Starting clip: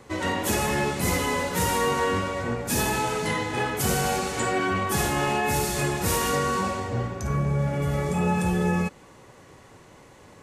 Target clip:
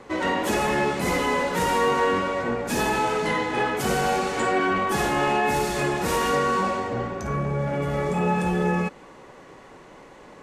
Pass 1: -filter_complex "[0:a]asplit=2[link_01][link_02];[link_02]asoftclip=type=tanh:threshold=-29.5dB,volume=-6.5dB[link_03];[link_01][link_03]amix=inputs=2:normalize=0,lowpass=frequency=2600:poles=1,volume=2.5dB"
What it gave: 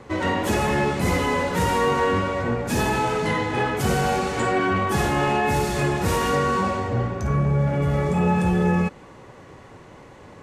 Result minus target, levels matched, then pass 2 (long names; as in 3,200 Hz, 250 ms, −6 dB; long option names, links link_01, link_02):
125 Hz band +5.5 dB
-filter_complex "[0:a]asplit=2[link_01][link_02];[link_02]asoftclip=type=tanh:threshold=-29.5dB,volume=-6.5dB[link_03];[link_01][link_03]amix=inputs=2:normalize=0,lowpass=frequency=2600:poles=1,equalizer=frequency=92:width=1.1:gain=-14,volume=2.5dB"